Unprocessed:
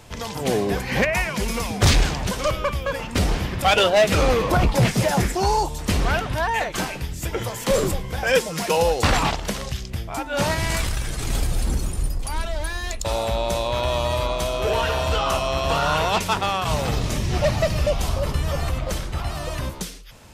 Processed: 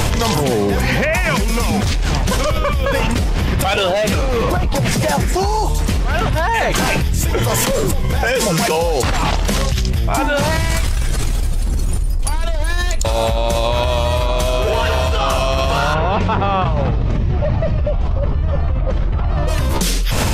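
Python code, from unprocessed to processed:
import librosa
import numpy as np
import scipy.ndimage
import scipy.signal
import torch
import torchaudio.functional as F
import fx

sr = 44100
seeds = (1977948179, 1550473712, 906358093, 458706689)

y = fx.spacing_loss(x, sr, db_at_10k=35, at=(15.93, 19.47), fade=0.02)
y = fx.low_shelf(y, sr, hz=100.0, db=7.5)
y = fx.env_flatten(y, sr, amount_pct=100)
y = y * 10.0 ** (-8.5 / 20.0)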